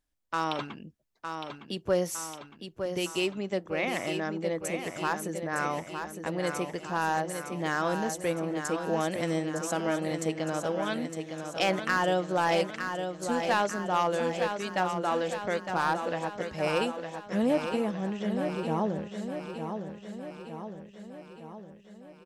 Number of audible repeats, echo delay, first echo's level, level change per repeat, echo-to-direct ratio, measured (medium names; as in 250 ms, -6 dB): 6, 910 ms, -7.0 dB, -4.5 dB, -5.0 dB